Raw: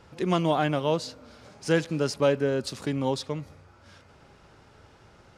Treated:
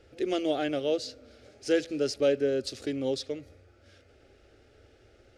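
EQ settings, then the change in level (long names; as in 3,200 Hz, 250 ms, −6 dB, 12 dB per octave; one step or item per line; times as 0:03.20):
high-shelf EQ 3,500 Hz −7.5 dB
phaser with its sweep stopped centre 410 Hz, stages 4
dynamic equaliser 5,100 Hz, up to +5 dB, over −53 dBFS, Q 1.1
0.0 dB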